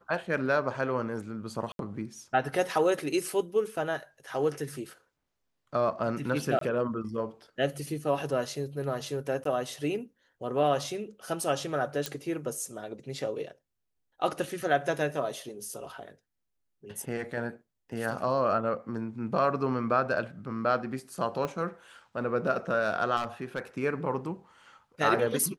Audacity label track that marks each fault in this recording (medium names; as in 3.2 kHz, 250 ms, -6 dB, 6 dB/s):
1.720000	1.790000	dropout 72 ms
6.590000	6.610000	dropout 23 ms
9.440000	9.450000	dropout 13 ms
12.060000	12.060000	pop -14 dBFS
21.450000	21.450000	pop -19 dBFS
23.160000	23.600000	clipped -26.5 dBFS